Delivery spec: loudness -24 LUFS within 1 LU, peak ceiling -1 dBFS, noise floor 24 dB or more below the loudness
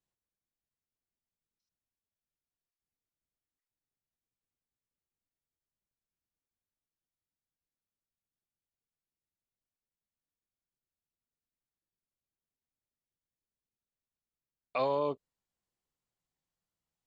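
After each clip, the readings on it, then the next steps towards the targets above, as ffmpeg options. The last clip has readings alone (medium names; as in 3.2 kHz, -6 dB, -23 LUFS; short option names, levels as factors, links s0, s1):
loudness -33.0 LUFS; peak level -20.0 dBFS; loudness target -24.0 LUFS
-> -af "volume=2.82"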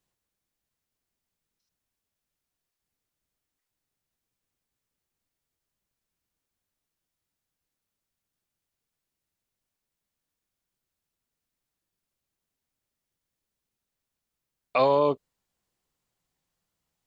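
loudness -24.0 LUFS; peak level -11.0 dBFS; noise floor -86 dBFS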